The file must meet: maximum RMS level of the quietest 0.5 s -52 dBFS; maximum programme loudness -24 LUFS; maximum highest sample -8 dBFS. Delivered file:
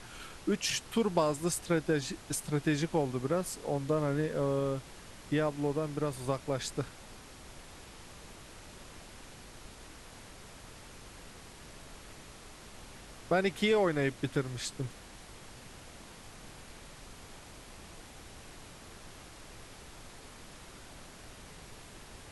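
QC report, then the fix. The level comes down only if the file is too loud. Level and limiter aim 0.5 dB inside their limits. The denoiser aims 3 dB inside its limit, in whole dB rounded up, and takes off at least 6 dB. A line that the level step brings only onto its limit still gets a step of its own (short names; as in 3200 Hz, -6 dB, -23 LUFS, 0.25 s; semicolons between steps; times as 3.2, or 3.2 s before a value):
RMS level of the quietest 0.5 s -50 dBFS: fail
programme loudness -32.5 LUFS: OK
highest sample -14.0 dBFS: OK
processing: denoiser 6 dB, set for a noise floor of -50 dBFS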